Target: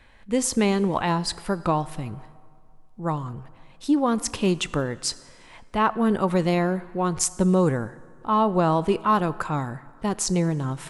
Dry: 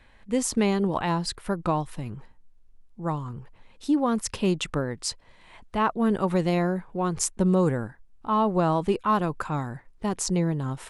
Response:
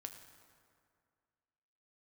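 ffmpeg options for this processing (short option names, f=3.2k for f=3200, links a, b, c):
-filter_complex "[0:a]asplit=2[a][b];[1:a]atrim=start_sample=2205,lowshelf=f=490:g=-6.5[c];[b][c]afir=irnorm=-1:irlink=0,volume=-1.5dB[d];[a][d]amix=inputs=2:normalize=0"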